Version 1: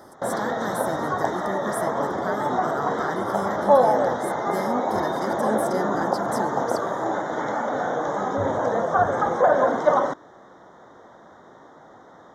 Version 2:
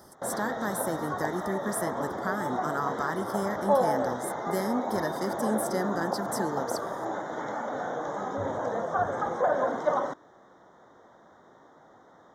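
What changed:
background −7.5 dB
master: add high-shelf EQ 11,000 Hz +5.5 dB

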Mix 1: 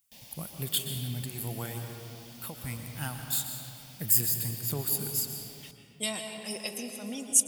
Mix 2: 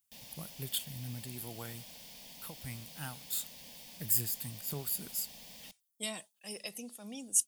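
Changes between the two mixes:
speech −4.0 dB
reverb: off

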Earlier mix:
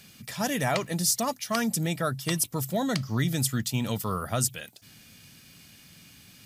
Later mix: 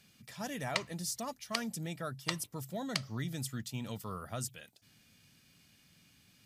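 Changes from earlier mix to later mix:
speech −11.5 dB
master: add high-shelf EQ 10,000 Hz −5.5 dB

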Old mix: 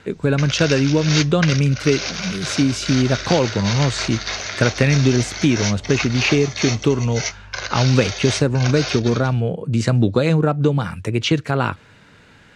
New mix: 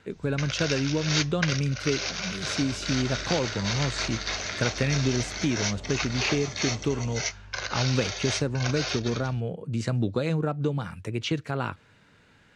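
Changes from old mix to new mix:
speech −10.0 dB
first sound −5.0 dB

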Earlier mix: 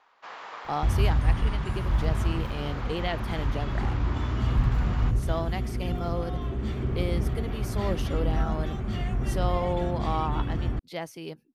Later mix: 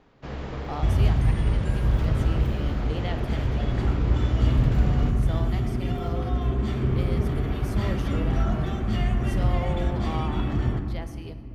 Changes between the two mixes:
speech −7.0 dB
first sound: remove high-pass with resonance 1,000 Hz, resonance Q 1.9
reverb: on, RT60 2.4 s

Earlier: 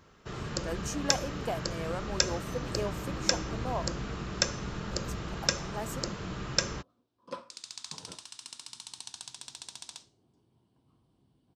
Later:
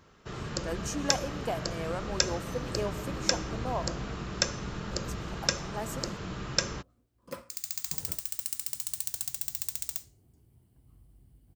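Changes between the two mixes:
second sound: remove loudspeaker in its box 190–7,200 Hz, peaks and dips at 980 Hz +7 dB, 2,000 Hz −7 dB, 3,600 Hz +5 dB, 7,000 Hz −8 dB
reverb: on, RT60 1.5 s

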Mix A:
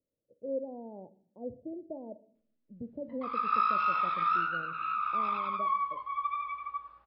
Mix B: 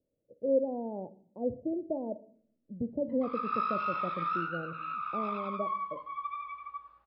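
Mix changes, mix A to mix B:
speech +7.5 dB
background −4.5 dB

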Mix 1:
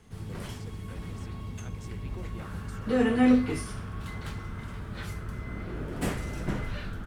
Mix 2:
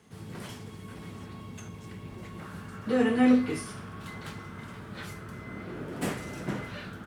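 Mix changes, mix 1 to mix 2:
speech −7.0 dB
master: add high-pass filter 140 Hz 12 dB per octave

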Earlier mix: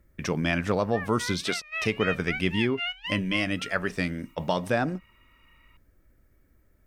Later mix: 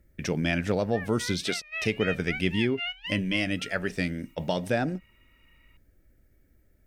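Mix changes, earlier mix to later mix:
background: add high-frequency loss of the air 56 metres
master: add parametric band 1,100 Hz −11 dB 0.56 octaves

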